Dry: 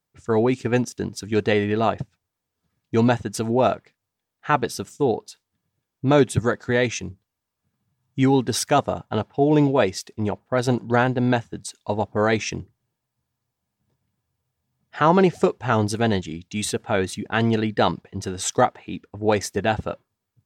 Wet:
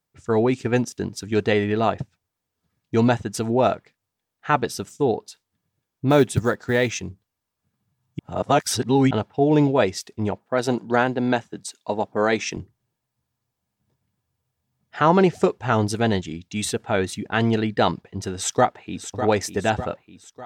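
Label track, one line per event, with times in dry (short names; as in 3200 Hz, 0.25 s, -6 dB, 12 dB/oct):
6.100000	7.000000	short-mantissa float mantissa of 4-bit
8.190000	9.110000	reverse
10.380000	12.570000	HPF 180 Hz
18.350000	19.100000	echo throw 0.6 s, feedback 50%, level -9.5 dB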